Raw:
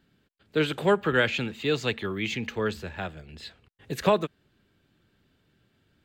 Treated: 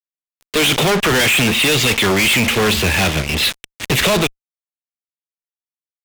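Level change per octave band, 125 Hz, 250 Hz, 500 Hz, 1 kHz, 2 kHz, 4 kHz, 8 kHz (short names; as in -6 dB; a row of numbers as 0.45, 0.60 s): +13.0, +11.0, +7.5, +10.0, +14.5, +19.0, +26.5 dB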